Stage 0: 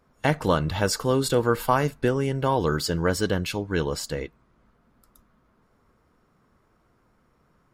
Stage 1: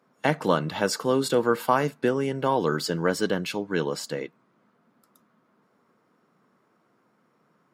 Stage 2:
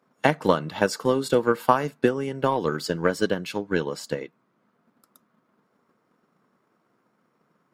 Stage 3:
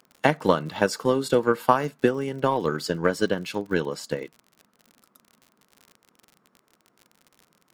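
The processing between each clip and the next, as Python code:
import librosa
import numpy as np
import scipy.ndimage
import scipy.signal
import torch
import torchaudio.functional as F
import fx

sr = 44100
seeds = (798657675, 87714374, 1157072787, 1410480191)

y1 = scipy.signal.sosfilt(scipy.signal.butter(4, 160.0, 'highpass', fs=sr, output='sos'), x)
y1 = fx.high_shelf(y1, sr, hz=5700.0, db=-4.5)
y2 = fx.transient(y1, sr, attack_db=8, sustain_db=-1)
y2 = y2 * librosa.db_to_amplitude(-2.5)
y3 = fx.dmg_crackle(y2, sr, seeds[0], per_s=56.0, level_db=-37.0)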